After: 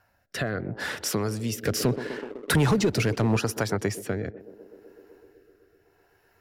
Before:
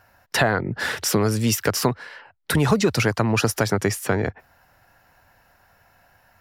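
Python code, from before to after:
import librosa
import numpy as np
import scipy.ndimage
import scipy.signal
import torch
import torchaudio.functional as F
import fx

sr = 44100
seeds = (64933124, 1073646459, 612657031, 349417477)

y = fx.echo_banded(x, sr, ms=126, feedback_pct=84, hz=380.0, wet_db=-14)
y = fx.leveller(y, sr, passes=2, at=(1.63, 3.37))
y = fx.rotary(y, sr, hz=0.75)
y = y * librosa.db_to_amplitude(-5.5)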